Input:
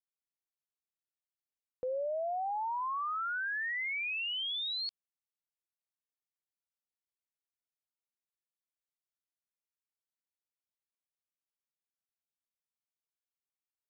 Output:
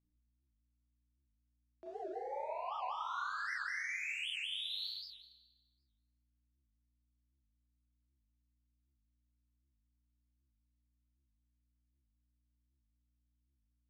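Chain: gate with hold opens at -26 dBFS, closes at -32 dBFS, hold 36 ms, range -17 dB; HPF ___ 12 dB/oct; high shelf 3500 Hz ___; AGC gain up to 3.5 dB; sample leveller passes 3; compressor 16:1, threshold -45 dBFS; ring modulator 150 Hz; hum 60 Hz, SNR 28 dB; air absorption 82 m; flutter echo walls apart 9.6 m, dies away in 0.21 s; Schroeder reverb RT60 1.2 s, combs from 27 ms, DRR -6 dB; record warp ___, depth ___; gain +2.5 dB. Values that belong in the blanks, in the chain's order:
1100 Hz, +10.5 dB, 78 rpm, 250 cents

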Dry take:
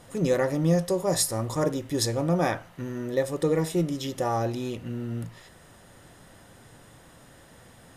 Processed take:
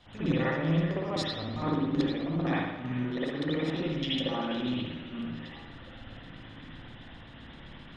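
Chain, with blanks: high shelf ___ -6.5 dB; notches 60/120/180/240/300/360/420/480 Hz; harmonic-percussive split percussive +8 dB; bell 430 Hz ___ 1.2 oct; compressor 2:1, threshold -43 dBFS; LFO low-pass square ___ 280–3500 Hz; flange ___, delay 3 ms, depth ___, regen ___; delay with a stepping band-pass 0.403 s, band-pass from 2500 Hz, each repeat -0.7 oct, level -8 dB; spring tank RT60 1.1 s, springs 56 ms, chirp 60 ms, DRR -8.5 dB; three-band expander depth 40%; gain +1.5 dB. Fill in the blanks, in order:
9500 Hz, -6 dB, 7.7 Hz, 0.83 Hz, 4 ms, -87%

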